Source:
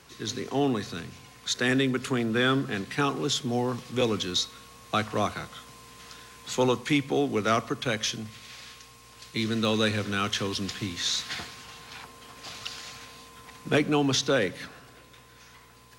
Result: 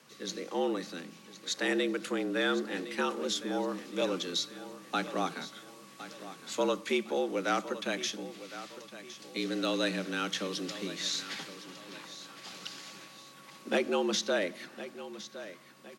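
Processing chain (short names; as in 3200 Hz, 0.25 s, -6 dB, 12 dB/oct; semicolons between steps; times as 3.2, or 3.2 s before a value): frequency shift +80 Hz; feedback echo 1.061 s, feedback 38%, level -14 dB; gain -5.5 dB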